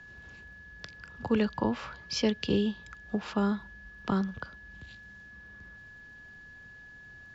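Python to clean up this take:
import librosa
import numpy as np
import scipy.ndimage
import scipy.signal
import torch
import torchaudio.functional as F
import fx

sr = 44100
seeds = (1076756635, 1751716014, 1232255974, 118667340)

y = fx.fix_declick_ar(x, sr, threshold=6.5)
y = fx.notch(y, sr, hz=1700.0, q=30.0)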